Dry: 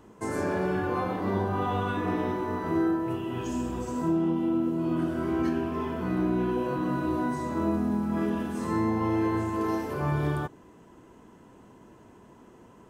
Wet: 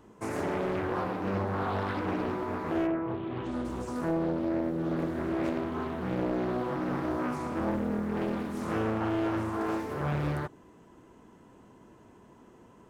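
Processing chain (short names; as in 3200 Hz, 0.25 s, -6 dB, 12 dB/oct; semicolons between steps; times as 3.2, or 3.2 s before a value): 2.86–3.64 LPF 1600 Hz -> 3600 Hz 12 dB/oct; Doppler distortion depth 0.87 ms; gain -2.5 dB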